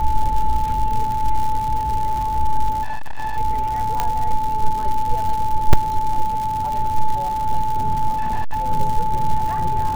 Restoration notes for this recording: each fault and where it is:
crackle 180 per s -24 dBFS
whine 870 Hz -20 dBFS
2.82–3.38 s: clipped -19 dBFS
4.00 s: pop -5 dBFS
5.73 s: dropout 4 ms
8.14–8.65 s: clipped -15.5 dBFS

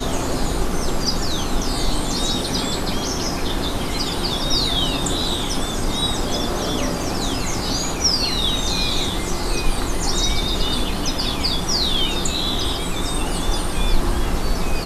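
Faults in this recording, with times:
7.03 s: dropout 2.5 ms

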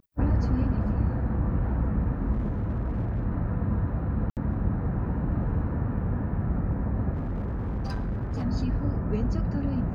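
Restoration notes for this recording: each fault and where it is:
2.32–3.25 s: clipped -24 dBFS
4.30–4.37 s: dropout 68 ms
7.13–8.45 s: clipped -26.5 dBFS

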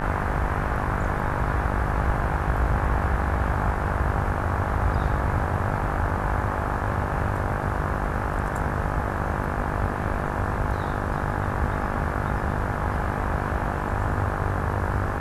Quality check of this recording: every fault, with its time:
buzz 50 Hz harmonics 35 -30 dBFS

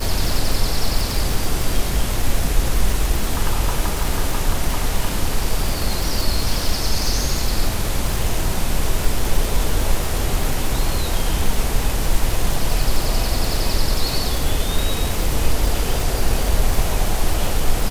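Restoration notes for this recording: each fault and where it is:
crackle 99 per s -19 dBFS

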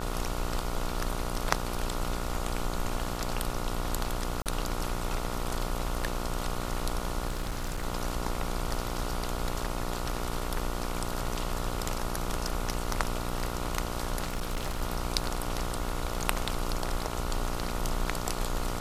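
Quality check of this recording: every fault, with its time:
buzz 60 Hz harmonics 24 -36 dBFS
4.42–4.46 s: dropout 38 ms
7.28–7.85 s: clipped -28 dBFS
14.23–14.82 s: clipped -27 dBFS

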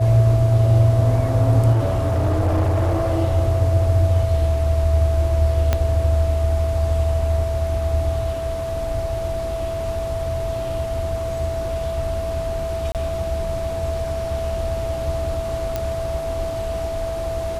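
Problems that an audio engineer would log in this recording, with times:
whine 660 Hz -24 dBFS
1.72–3.11 s: clipped -15 dBFS
5.73 s: pop -5 dBFS
12.92–12.95 s: dropout 28 ms
15.76 s: pop -10 dBFS

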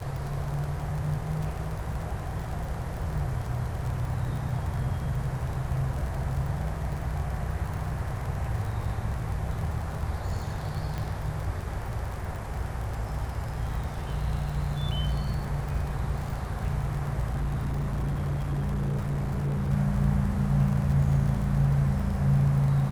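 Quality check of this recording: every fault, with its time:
crackle 44 per s -33 dBFS
10.98 s: pop -20 dBFS
17.31–19.71 s: clipped -25 dBFS

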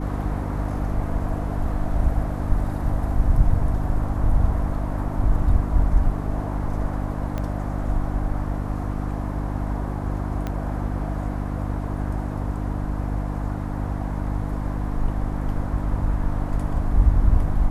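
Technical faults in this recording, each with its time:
hum 50 Hz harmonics 6 -27 dBFS
7.38 s: pop -16 dBFS
10.47 s: pop -15 dBFS

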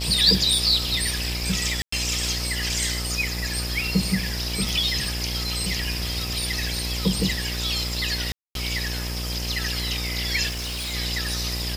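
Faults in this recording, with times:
buzz 60 Hz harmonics 18 -30 dBFS
crackle 29 per s -32 dBFS
1.82–1.92 s: dropout 104 ms
4.69 s: pop
8.32–8.55 s: dropout 232 ms
10.49–10.95 s: clipped -27 dBFS

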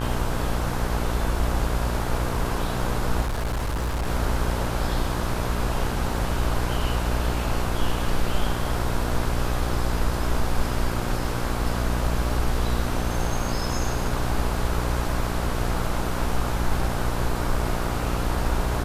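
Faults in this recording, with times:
buzz 60 Hz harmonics 27 -28 dBFS
3.21–4.07 s: clipped -22.5 dBFS

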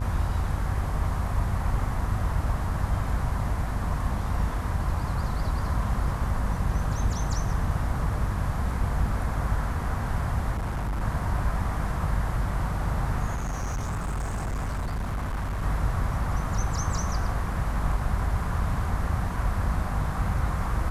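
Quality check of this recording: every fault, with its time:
buzz 50 Hz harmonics 27 -31 dBFS
10.54–11.01 s: clipped -25.5 dBFS
13.34–15.63 s: clipped -26 dBFS

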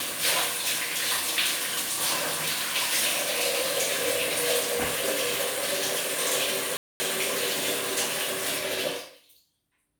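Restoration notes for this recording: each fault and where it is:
6.77–7.00 s: dropout 230 ms

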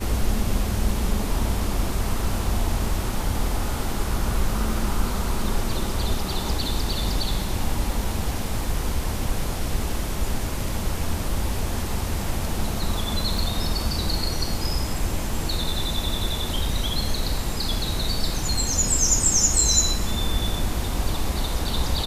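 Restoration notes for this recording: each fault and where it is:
13.38 s: dropout 2.2 ms

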